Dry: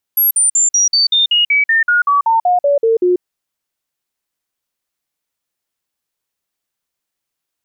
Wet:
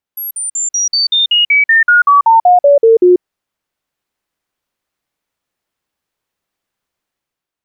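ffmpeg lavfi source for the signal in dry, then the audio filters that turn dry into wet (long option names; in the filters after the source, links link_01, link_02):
-f lavfi -i "aevalsrc='0.355*clip(min(mod(t,0.19),0.14-mod(t,0.19))/0.005,0,1)*sin(2*PI*11500*pow(2,-floor(t/0.19)/3)*mod(t,0.19))':duration=3.04:sample_rate=44100"
-af "dynaudnorm=framelen=160:gausssize=7:maxgain=7.5dB,highshelf=frequency=3800:gain=-11"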